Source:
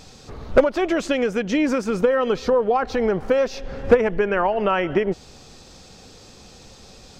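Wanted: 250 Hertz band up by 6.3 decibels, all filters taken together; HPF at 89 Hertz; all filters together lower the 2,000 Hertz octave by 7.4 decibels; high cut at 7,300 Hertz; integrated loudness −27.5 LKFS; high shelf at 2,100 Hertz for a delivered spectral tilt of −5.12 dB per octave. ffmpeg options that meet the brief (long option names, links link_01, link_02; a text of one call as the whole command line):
ffmpeg -i in.wav -af "highpass=89,lowpass=7300,equalizer=frequency=250:width_type=o:gain=8,equalizer=frequency=2000:width_type=o:gain=-6,highshelf=frequency=2100:gain=-7.5,volume=-9dB" out.wav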